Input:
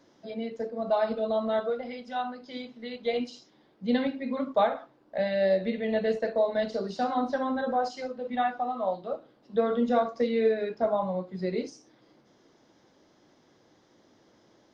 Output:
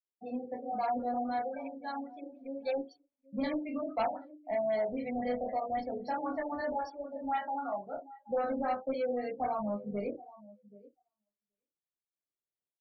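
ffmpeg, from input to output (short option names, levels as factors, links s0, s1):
-filter_complex "[0:a]adynamicequalizer=threshold=0.0112:dfrequency=730:dqfactor=1.2:tfrequency=730:tqfactor=1.2:attack=5:release=100:ratio=0.375:range=2:mode=cutabove:tftype=bell,asetrate=42845,aresample=44100,atempo=1.0293,asplit=2[s0][s1];[s1]adelay=38,volume=0.398[s2];[s0][s2]amix=inputs=2:normalize=0,asetrate=50715,aresample=44100,flanger=delay=19.5:depth=6.6:speed=0.31,agate=range=0.0224:threshold=0.00251:ratio=3:detection=peak,asubboost=boost=3:cutoff=120,asoftclip=type=tanh:threshold=0.0562,asplit=2[s3][s4];[s4]aecho=0:1:778|1556:0.126|0.0239[s5];[s3][s5]amix=inputs=2:normalize=0,afftdn=nr=27:nf=-44,afftfilt=real='re*lt(b*sr/1024,820*pow(6000/820,0.5+0.5*sin(2*PI*3.8*pts/sr)))':imag='im*lt(b*sr/1024,820*pow(6000/820,0.5+0.5*sin(2*PI*3.8*pts/sr)))':win_size=1024:overlap=0.75"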